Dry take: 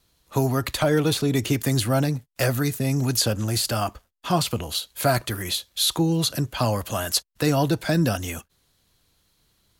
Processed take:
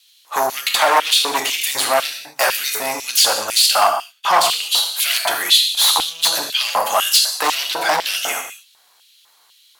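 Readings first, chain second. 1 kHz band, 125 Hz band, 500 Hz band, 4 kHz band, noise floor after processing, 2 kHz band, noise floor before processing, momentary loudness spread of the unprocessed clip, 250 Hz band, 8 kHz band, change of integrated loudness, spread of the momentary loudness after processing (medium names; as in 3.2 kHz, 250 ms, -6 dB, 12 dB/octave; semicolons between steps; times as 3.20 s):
+12.0 dB, under -25 dB, +2.0 dB, +12.5 dB, -55 dBFS, +10.5 dB, -67 dBFS, 6 LU, -14.0 dB, +10.0 dB, +7.5 dB, 8 LU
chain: gated-style reverb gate 260 ms falling, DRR 2 dB; sine folder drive 8 dB, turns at -8 dBFS; LFO high-pass square 2 Hz 860–3000 Hz; trim -2 dB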